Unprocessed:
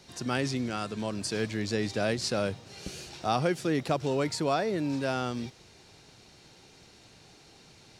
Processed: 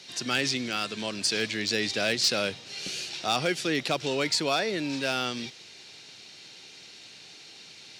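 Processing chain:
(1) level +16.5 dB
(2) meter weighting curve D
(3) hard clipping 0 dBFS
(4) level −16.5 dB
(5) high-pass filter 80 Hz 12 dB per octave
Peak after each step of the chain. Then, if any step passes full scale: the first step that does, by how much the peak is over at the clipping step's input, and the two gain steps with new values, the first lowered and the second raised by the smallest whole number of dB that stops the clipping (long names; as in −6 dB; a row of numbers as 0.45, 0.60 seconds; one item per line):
+3.0, +8.0, 0.0, −16.5, −15.0 dBFS
step 1, 8.0 dB
step 1 +8.5 dB, step 4 −8.5 dB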